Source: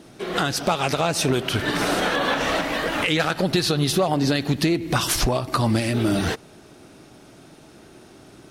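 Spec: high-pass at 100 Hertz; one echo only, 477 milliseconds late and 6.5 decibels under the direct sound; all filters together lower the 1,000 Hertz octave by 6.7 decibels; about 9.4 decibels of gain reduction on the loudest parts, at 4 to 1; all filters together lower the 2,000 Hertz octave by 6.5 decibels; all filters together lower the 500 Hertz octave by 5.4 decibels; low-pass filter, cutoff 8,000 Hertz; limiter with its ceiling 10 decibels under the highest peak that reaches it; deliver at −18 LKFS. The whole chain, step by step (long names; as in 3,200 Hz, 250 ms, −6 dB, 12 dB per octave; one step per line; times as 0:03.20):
high-pass filter 100 Hz
low-pass filter 8,000 Hz
parametric band 500 Hz −5.5 dB
parametric band 1,000 Hz −5.5 dB
parametric band 2,000 Hz −6.5 dB
downward compressor 4 to 1, threshold −30 dBFS
brickwall limiter −26 dBFS
single-tap delay 477 ms −6.5 dB
level +17 dB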